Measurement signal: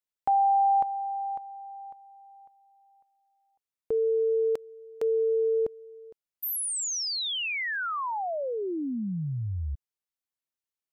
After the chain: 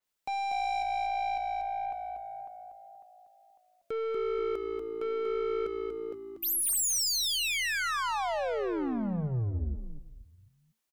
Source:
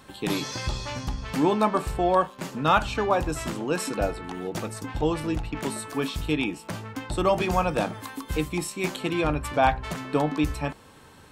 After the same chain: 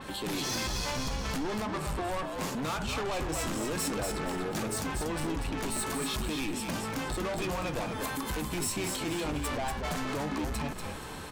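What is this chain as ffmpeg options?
-filter_complex "[0:a]equalizer=f=110:t=o:w=0.25:g=-9,acompressor=threshold=-32dB:ratio=4:attack=1.4:release=163:knee=6:detection=rms,aeval=exprs='(tanh(100*val(0)+0.1)-tanh(0.1))/100':c=same,asplit=5[a][b][c][d][e];[b]adelay=239,afreqshift=-56,volume=-5dB[f];[c]adelay=478,afreqshift=-112,volume=-15.2dB[g];[d]adelay=717,afreqshift=-168,volume=-25.3dB[h];[e]adelay=956,afreqshift=-224,volume=-35.5dB[i];[a][f][g][h][i]amix=inputs=5:normalize=0,adynamicequalizer=threshold=0.00224:dfrequency=4700:dqfactor=0.7:tfrequency=4700:tqfactor=0.7:attack=5:release=100:ratio=0.375:range=1.5:mode=boostabove:tftype=highshelf,volume=9dB"

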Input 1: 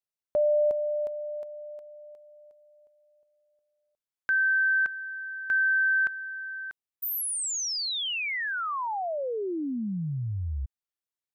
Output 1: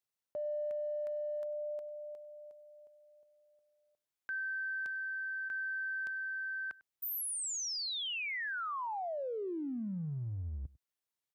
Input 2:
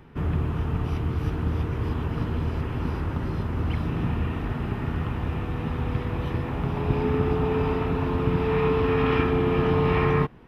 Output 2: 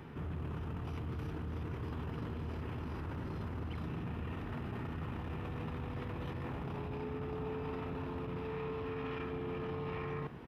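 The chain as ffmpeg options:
-filter_complex "[0:a]areverse,acompressor=threshold=-37dB:ratio=10:attack=0.46:release=40:knee=1:detection=peak,areverse,highpass=62,asplit=2[a][b];[b]adelay=99.13,volume=-21dB,highshelf=f=4k:g=-2.23[c];[a][c]amix=inputs=2:normalize=0,volume=1dB"

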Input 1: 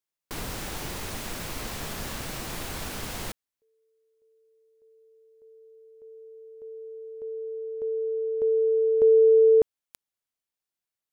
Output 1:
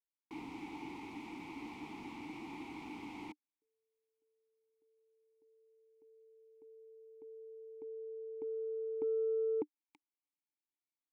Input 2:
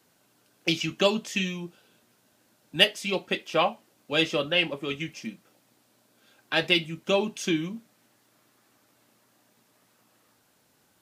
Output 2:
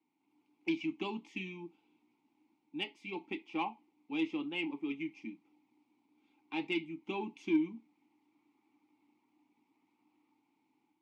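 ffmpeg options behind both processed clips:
-filter_complex "[0:a]dynaudnorm=f=170:g=3:m=6dB,asplit=3[a][b][c];[a]bandpass=f=300:t=q:w=8,volume=0dB[d];[b]bandpass=f=870:t=q:w=8,volume=-6dB[e];[c]bandpass=f=2.24k:t=q:w=8,volume=-9dB[f];[d][e][f]amix=inputs=3:normalize=0,aeval=exprs='0.168*(cos(1*acos(clip(val(0)/0.168,-1,1)))-cos(1*PI/2))+0.00596*(cos(5*acos(clip(val(0)/0.168,-1,1)))-cos(5*PI/2))':c=same,volume=-4.5dB"

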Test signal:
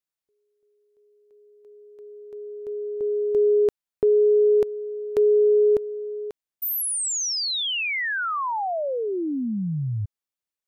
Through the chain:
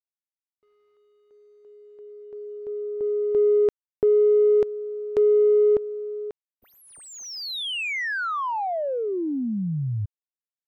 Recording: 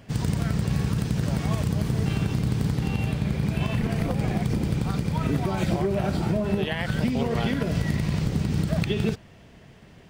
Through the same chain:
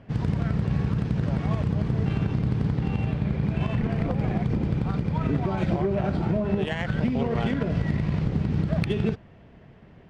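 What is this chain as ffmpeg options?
-af "acrusher=bits=10:mix=0:aa=0.000001,adynamicsmooth=sensitivity=1.5:basefreq=2.4k"

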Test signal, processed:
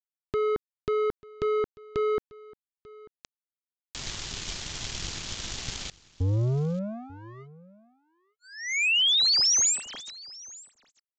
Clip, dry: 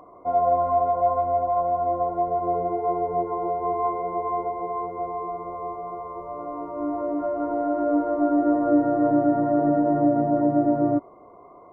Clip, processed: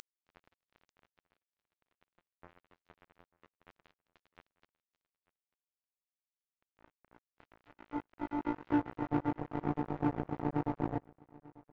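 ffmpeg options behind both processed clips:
-filter_complex "[0:a]firequalizer=gain_entry='entry(110,0);entry(280,-7);entry(410,-7);entry(590,-24);entry(970,-24);entry(1500,-8);entry(3200,6)':delay=0.05:min_phase=1,acompressor=mode=upward:threshold=-29dB:ratio=2.5,asoftclip=type=hard:threshold=-19.5dB,acrusher=bits=3:mix=0:aa=0.5,asplit=2[a][b];[b]aecho=0:1:892:0.0794[c];[a][c]amix=inputs=2:normalize=0,aresample=16000,aresample=44100,volume=-3.5dB"

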